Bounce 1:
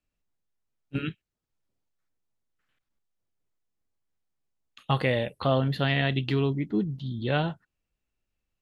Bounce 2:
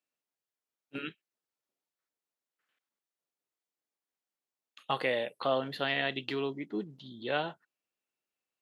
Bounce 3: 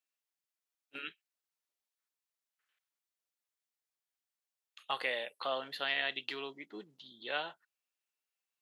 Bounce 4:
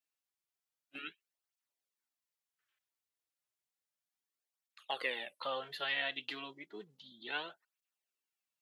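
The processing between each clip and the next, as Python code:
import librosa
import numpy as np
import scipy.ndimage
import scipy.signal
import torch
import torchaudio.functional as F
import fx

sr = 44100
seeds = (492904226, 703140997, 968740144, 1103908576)

y1 = scipy.signal.sosfilt(scipy.signal.butter(2, 360.0, 'highpass', fs=sr, output='sos'), x)
y1 = F.gain(torch.from_numpy(y1), -3.0).numpy()
y2 = fx.highpass(y1, sr, hz=1300.0, slope=6)
y3 = fx.flanger_cancel(y2, sr, hz=0.32, depth_ms=5.5)
y3 = F.gain(torch.from_numpy(y3), 1.0).numpy()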